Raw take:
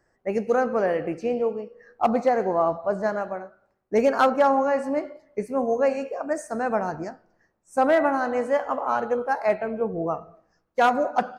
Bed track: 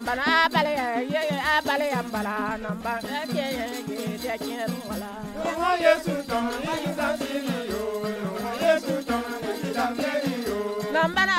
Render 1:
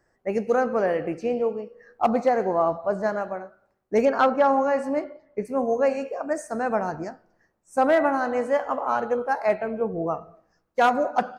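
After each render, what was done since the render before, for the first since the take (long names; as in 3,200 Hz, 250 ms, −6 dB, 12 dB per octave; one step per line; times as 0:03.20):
0:04.05–0:04.49: high-frequency loss of the air 100 metres
0:05.04–0:05.45: high-frequency loss of the air 170 metres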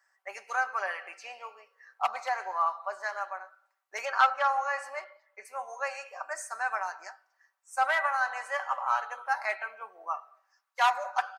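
high-pass filter 970 Hz 24 dB per octave
comb filter 5.2 ms, depth 57%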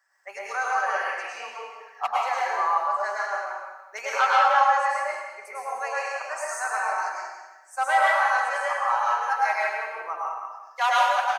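on a send: single-tap delay 181 ms −10.5 dB
on the sum: dense smooth reverb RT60 1.1 s, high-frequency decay 0.9×, pre-delay 90 ms, DRR −5.5 dB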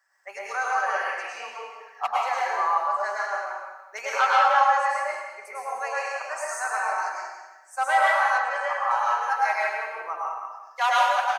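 0:08.38–0:08.91: high-frequency loss of the air 100 metres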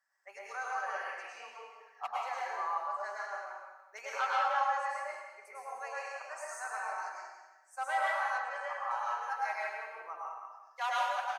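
level −11.5 dB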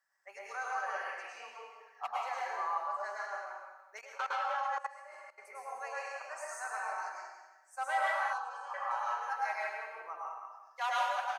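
0:04.01–0:05.38: output level in coarse steps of 17 dB
0:08.33–0:08.74: phaser with its sweep stopped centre 400 Hz, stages 8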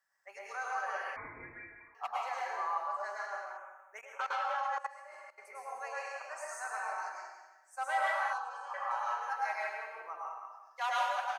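0:01.16–0:01.95: voice inversion scrambler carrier 2,800 Hz
0:03.57–0:04.21: Butterworth band-reject 4,500 Hz, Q 1.4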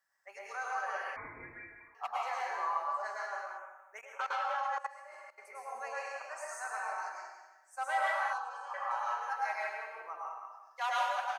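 0:02.18–0:03.66: double-tracking delay 14 ms −5 dB
0:05.74–0:06.26: low shelf with overshoot 160 Hz −12 dB, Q 3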